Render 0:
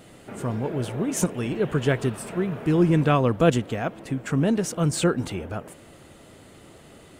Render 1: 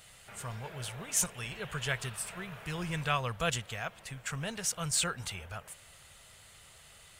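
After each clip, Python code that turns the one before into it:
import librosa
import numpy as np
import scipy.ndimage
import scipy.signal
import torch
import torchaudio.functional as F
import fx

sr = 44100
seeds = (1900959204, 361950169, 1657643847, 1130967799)

y = fx.tone_stack(x, sr, knobs='10-0-10')
y = y * 10.0 ** (1.5 / 20.0)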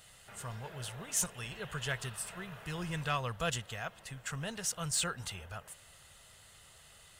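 y = 10.0 ** (-17.5 / 20.0) * np.tanh(x / 10.0 ** (-17.5 / 20.0))
y = fx.notch(y, sr, hz=2300.0, q=9.9)
y = y * 10.0 ** (-2.0 / 20.0)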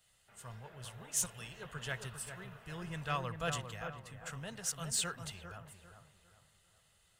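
y = fx.echo_wet_lowpass(x, sr, ms=401, feedback_pct=44, hz=1800.0, wet_db=-6)
y = fx.band_widen(y, sr, depth_pct=40)
y = y * 10.0 ** (-5.0 / 20.0)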